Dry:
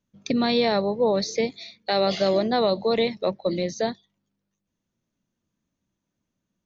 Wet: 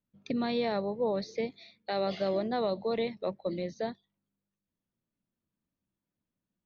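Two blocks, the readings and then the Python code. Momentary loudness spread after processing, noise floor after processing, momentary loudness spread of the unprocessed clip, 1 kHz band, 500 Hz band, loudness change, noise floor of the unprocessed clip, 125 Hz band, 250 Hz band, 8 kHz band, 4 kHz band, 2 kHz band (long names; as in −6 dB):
8 LU, below −85 dBFS, 8 LU, −8.5 dB, −8.5 dB, −9.0 dB, −82 dBFS, −8.0 dB, −8.0 dB, can't be measured, −13.5 dB, −10.0 dB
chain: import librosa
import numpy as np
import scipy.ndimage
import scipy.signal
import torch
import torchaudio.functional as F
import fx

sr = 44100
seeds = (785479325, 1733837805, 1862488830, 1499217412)

y = fx.air_absorb(x, sr, metres=180.0)
y = F.gain(torch.from_numpy(y), -8.0).numpy()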